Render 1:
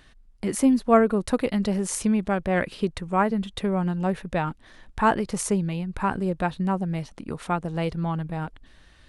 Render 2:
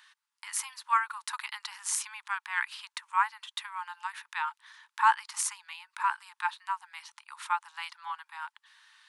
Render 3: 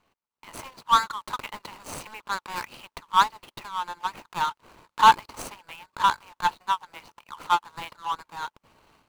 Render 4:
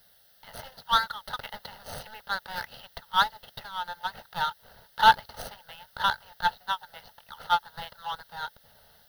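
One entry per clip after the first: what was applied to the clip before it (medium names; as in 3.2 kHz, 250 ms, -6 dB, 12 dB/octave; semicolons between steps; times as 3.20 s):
Chebyshev high-pass 870 Hz, order 8
median filter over 25 samples; level rider gain up to 11 dB
word length cut 10-bit, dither triangular; static phaser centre 1.6 kHz, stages 8; trim +2 dB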